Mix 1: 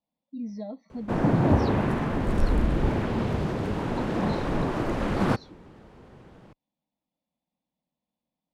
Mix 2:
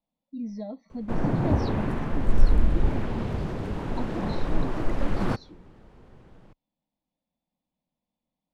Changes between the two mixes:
background -4.5 dB; master: remove HPF 95 Hz 6 dB/oct

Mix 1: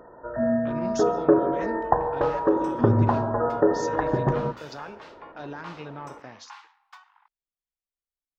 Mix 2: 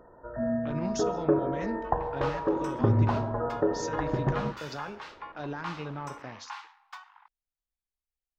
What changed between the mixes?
first sound -7.0 dB; second sound +4.0 dB; master: add low shelf 110 Hz +10 dB

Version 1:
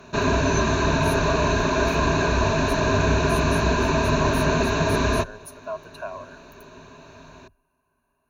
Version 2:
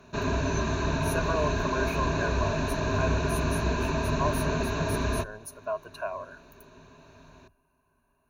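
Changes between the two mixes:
background -8.5 dB; master: add low shelf 180 Hz +4.5 dB

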